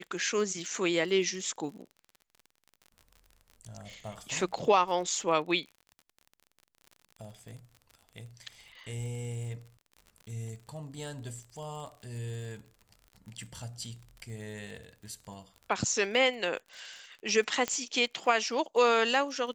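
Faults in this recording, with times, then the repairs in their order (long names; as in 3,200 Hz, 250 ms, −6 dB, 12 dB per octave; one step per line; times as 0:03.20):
surface crackle 40 per second −41 dBFS
0:17.68: click −15 dBFS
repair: click removal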